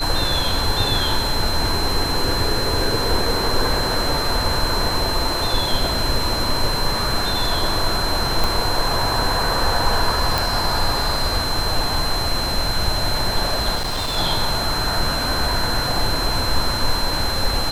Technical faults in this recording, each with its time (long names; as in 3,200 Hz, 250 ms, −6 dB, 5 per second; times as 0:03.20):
whistle 4,100 Hz −24 dBFS
0:08.44: click
0:10.38: click
0:13.75–0:14.17: clipping −20 dBFS